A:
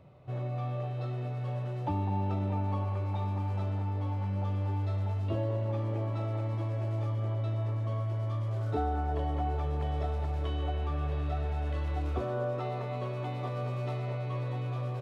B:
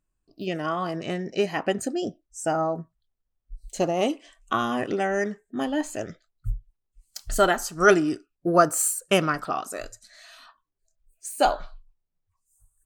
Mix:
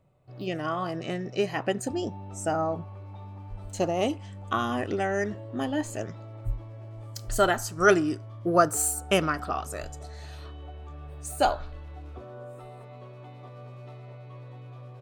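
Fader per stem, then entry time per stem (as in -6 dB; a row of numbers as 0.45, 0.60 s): -10.0, -2.5 dB; 0.00, 0.00 s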